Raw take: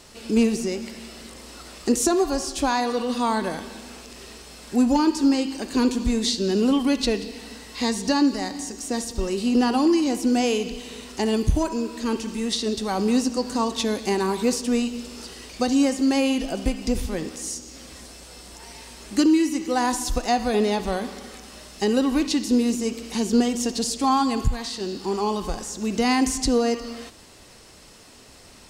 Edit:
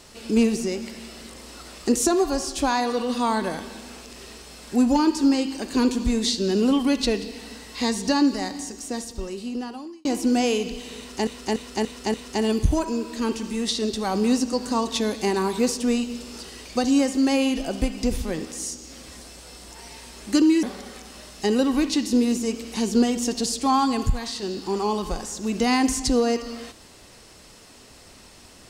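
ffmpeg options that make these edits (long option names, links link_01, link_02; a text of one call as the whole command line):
ffmpeg -i in.wav -filter_complex "[0:a]asplit=7[link_01][link_02][link_03][link_04][link_05][link_06][link_07];[link_01]atrim=end=10.05,asetpts=PTS-STARTPTS,afade=type=out:start_time=8.43:duration=1.62[link_08];[link_02]atrim=start=10.05:end=11.272,asetpts=PTS-STARTPTS,afade=type=in:duration=0.004:curve=hsin[link_09];[link_03]atrim=start=10.978:end=11.272[link_10];[link_04]atrim=start=10.978:end=11.272[link_11];[link_05]atrim=start=10.978:end=11.272[link_12];[link_06]atrim=start=10.978:end=19.472[link_13];[link_07]atrim=start=21.008[link_14];[link_08][link_09]concat=n=2:v=0:a=1[link_15];[link_15][link_10]acrossfade=duration=0.004:curve1=hsin:curve2=hsin[link_16];[link_16][link_11]acrossfade=duration=0.004:curve1=hsin:curve2=hsin[link_17];[link_17][link_12]acrossfade=duration=0.004:curve1=hsin:curve2=hsin[link_18];[link_18][link_13]acrossfade=duration=0.004:curve1=hsin:curve2=hsin[link_19];[link_19][link_14]acrossfade=duration=0.004:curve1=hsin:curve2=hsin" out.wav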